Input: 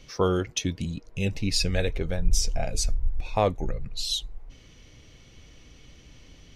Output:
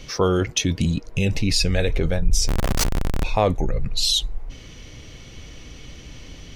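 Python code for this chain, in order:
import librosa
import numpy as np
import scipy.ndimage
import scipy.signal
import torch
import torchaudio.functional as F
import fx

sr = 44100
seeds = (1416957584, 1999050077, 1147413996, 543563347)

p1 = fx.over_compress(x, sr, threshold_db=-29.0, ratio=-0.5)
p2 = x + (p1 * librosa.db_to_amplitude(-2.0))
p3 = fx.schmitt(p2, sr, flips_db=-27.0, at=(2.48, 3.24))
y = p3 * librosa.db_to_amplitude(3.0)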